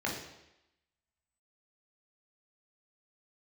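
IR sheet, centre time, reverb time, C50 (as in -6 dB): 39 ms, 0.90 s, 4.5 dB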